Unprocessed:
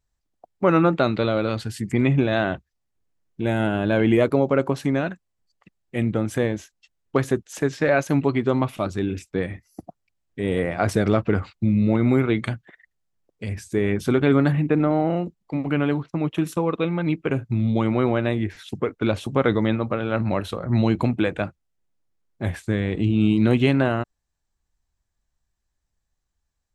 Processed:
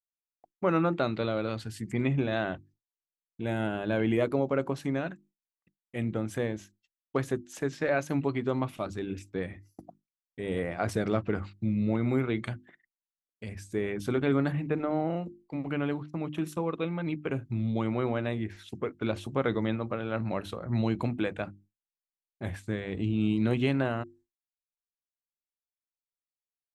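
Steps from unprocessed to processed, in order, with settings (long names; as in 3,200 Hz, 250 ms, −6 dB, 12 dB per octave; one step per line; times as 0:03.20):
mains-hum notches 50/100/150/200/250/300/350 Hz
downward expander −45 dBFS
level −8 dB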